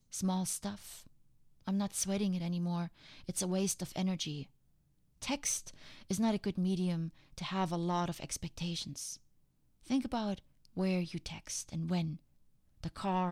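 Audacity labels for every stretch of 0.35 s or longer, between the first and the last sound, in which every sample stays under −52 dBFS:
1.070000	1.670000	silence
4.460000	5.220000	silence
9.170000	9.840000	silence
12.170000	12.810000	silence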